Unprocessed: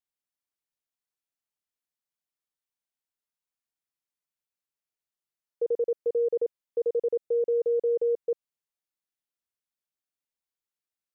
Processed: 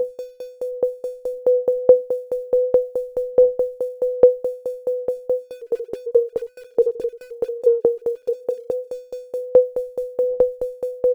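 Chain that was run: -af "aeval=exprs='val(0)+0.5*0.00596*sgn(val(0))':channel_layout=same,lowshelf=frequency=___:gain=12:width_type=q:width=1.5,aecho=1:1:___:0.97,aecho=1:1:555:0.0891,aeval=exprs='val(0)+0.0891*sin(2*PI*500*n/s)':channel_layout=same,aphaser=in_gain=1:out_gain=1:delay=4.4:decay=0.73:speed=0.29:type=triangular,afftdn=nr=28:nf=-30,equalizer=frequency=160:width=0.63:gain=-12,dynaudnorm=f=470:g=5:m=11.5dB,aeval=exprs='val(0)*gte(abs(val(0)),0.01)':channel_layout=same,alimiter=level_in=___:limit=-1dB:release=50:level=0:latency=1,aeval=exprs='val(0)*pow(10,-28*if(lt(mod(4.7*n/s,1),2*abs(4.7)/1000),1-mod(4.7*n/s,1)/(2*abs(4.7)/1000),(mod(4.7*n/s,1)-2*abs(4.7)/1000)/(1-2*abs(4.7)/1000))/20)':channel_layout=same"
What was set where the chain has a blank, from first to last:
620, 4.4, 4dB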